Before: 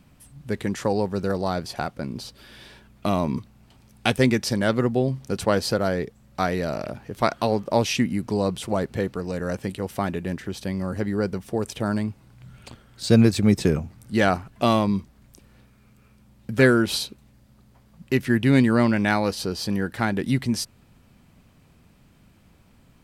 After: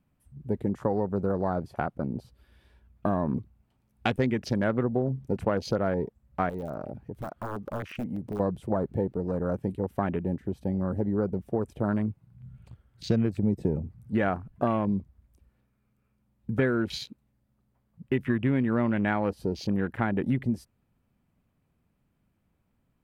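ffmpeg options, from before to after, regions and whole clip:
-filter_complex "[0:a]asettb=1/sr,asplit=3[a][b][c];[a]atrim=end=6.494[d];[b]atrim=start=6.49:end=8.4,asetpts=PTS-STARTPTS,afade=t=in:d=0.004:c=qsin,afade=t=out:st=1.906:d=0.004:c=qsin,acompressor=threshold=-34dB:ratio=2:attack=3.2:release=140:knee=1:detection=peak,aeval=exprs='(mod(14.1*val(0)+1,2)-1)/14.1':c=same[e];[c]atrim=start=8.396[f];[d][e]acrossfade=d=0.004:c1=hsin:c2=qsin[g];[g][f]acrossfade=d=0.004:c1=qsin:c2=hsin,afwtdn=0.0224,equalizer=f=5.3k:t=o:w=1.9:g=-9,acompressor=threshold=-22dB:ratio=5"

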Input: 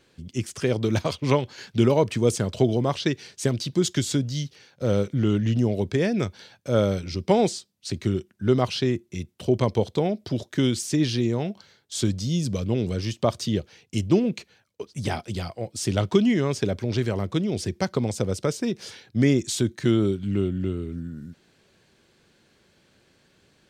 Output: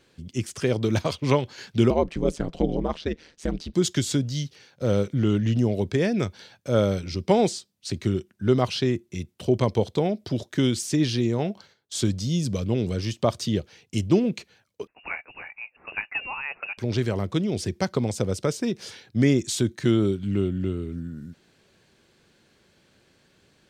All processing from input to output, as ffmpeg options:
-filter_complex "[0:a]asettb=1/sr,asplit=3[a][b][c];[a]atrim=end=1.904[d];[b]atrim=start=1.9:end=3.74,asetpts=PTS-STARTPTS,afade=t=in:d=0.004:c=qsin,afade=t=out:st=1.836:d=0.004:c=qsin,lowpass=f=2.2k:p=1,aeval=exprs='val(0)*sin(2*PI*78*n/s)':c=same[e];[c]atrim=start=3.736[f];[d][e]acrossfade=d=0.004:c1=hsin:c2=qsin[g];[g][f]acrossfade=d=0.004:c1=qsin:c2=hsin,asettb=1/sr,asplit=3[h][i][j];[h]atrim=end=11.394[k];[i]atrim=start=11.39:end=11.98,asetpts=PTS-STARTPTS,afade=t=in:d=0.004:c=qsin,afade=t=out:st=0.586:d=0.004:c=qsin,agate=range=-10dB:threshold=-56dB:ratio=16:release=100:detection=peak,equalizer=f=650:t=o:w=2.5:g=3.5[l];[j]atrim=start=11.976[m];[k][l]acrossfade=d=0.004:c1=hsin:c2=qsin[n];[n][m]acrossfade=d=0.004:c1=qsin:c2=hsin,asettb=1/sr,asplit=3[o][p][q];[o]atrim=end=14.874[r];[p]atrim=start=14.87:end=16.78,asetpts=PTS-STARTPTS,afade=t=in:d=0.004:c=qsin,afade=t=out:st=1.906:d=0.004:c=qsin,highpass=680,lowpass=f=2.6k:t=q:w=0.5098,lowpass=f=2.6k:t=q:w=0.6013,lowpass=f=2.6k:t=q:w=0.9,lowpass=f=2.6k:t=q:w=2.563,afreqshift=-3000[s];[q]atrim=start=16.776[t];[r][s]acrossfade=d=0.004:c1=hsin:c2=qsin[u];[u][t]acrossfade=d=0.004:c1=qsin:c2=hsin"

